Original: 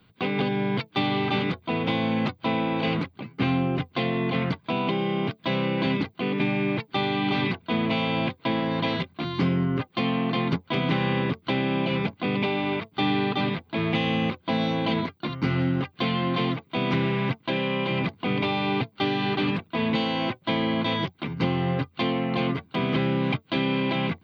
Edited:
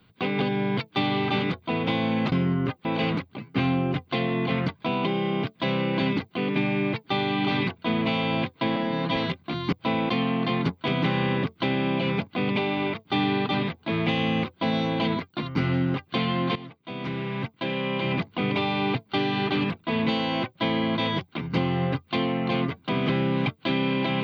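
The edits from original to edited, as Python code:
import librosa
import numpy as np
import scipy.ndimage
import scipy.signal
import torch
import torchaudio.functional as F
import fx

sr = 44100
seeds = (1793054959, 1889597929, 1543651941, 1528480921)

y = fx.edit(x, sr, fx.swap(start_s=2.32, length_s=0.37, other_s=9.43, other_length_s=0.53),
    fx.stretch_span(start_s=8.6, length_s=0.27, factor=1.5),
    fx.fade_in_from(start_s=16.42, length_s=1.59, floor_db=-16.5), tone=tone)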